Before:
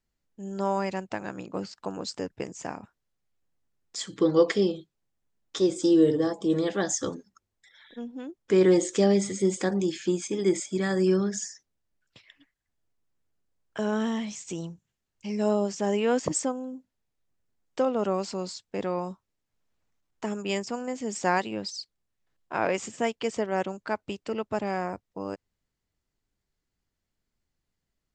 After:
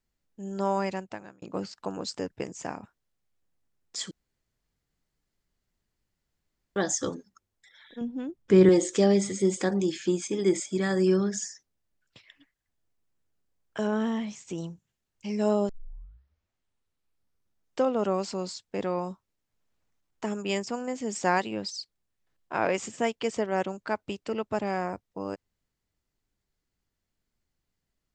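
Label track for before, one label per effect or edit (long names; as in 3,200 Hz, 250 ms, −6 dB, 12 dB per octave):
0.870000	1.420000	fade out
4.110000	6.760000	fill with room tone
8.010000	8.690000	bass and treble bass +10 dB, treble −3 dB
13.870000	14.580000	high-shelf EQ 3,600 Hz −9 dB
15.690000	15.690000	tape start 2.12 s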